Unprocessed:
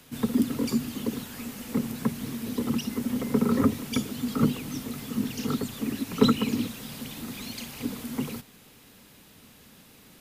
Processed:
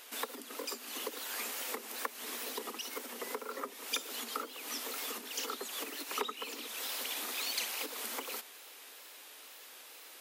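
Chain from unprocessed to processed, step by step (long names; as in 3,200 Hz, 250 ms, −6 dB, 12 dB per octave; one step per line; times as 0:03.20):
in parallel at −9 dB: dead-zone distortion −40.5 dBFS
on the sum: downward compressor 20 to 1, threshold −30 dBFS, peak gain reduction 20.5 dB
Bessel high-pass filter 620 Hz, order 8
tape wow and flutter 84 cents
level +3.5 dB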